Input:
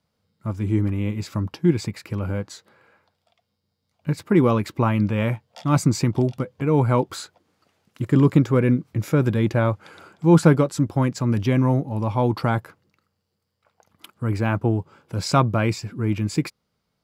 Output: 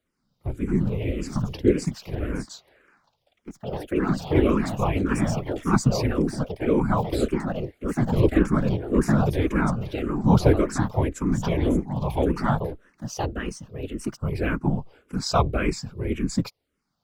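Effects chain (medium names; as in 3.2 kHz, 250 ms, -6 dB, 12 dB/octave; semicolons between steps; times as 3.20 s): whisper effect; ever faster or slower copies 293 ms, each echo +3 st, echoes 2, each echo -6 dB; barber-pole phaser -1.8 Hz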